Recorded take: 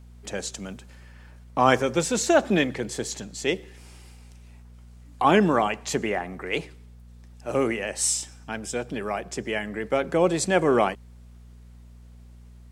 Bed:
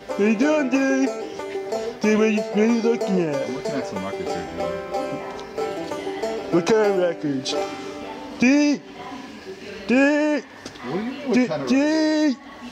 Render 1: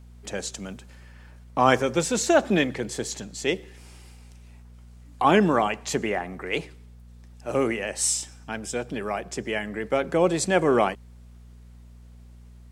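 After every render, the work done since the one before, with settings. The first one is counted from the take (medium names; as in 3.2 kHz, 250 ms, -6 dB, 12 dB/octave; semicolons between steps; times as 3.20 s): no audible change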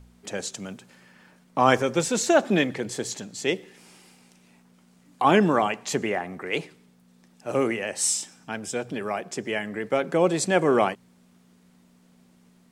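de-hum 60 Hz, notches 2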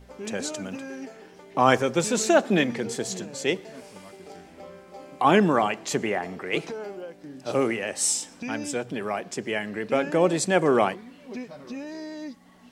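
add bed -17.5 dB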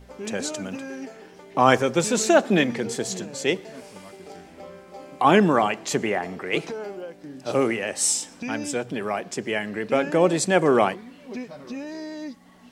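trim +2 dB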